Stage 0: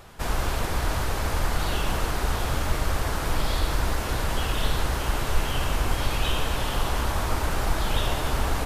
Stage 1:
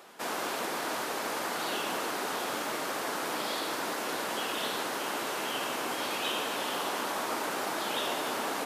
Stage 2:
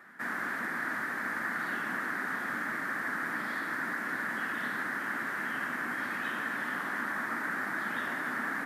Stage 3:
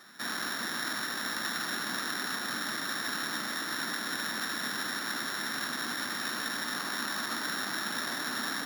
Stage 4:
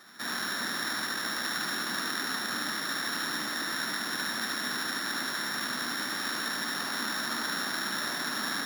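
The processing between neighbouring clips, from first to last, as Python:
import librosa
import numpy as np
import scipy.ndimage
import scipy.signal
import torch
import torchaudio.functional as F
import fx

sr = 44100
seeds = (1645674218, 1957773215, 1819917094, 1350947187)

y1 = scipy.signal.sosfilt(scipy.signal.butter(4, 240.0, 'highpass', fs=sr, output='sos'), x)
y1 = F.gain(torch.from_numpy(y1), -2.5).numpy()
y2 = fx.curve_eq(y1, sr, hz=(120.0, 240.0, 450.0, 930.0, 1800.0, 2700.0, 6600.0, 12000.0), db=(0, 3, -13, -8, 10, -15, -16, -12))
y3 = np.r_[np.sort(y2[:len(y2) // 8 * 8].reshape(-1, 8), axis=1).ravel(), y2[len(y2) // 8 * 8:]]
y4 = y3 + 10.0 ** (-4.0 / 20.0) * np.pad(y3, (int(74 * sr / 1000.0), 0))[:len(y3)]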